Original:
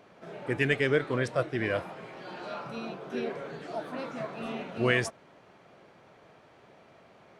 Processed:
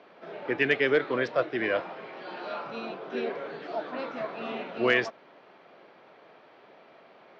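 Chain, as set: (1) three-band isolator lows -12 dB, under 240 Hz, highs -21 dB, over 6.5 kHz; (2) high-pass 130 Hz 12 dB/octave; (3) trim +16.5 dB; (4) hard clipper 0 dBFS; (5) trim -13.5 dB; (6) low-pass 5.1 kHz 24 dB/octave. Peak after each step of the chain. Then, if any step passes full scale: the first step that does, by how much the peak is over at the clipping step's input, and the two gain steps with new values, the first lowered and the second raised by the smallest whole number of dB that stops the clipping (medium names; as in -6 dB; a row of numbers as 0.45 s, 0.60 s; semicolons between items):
-13.0 dBFS, -13.0 dBFS, +3.5 dBFS, 0.0 dBFS, -13.5 dBFS, -12.5 dBFS; step 3, 3.5 dB; step 3 +12.5 dB, step 5 -9.5 dB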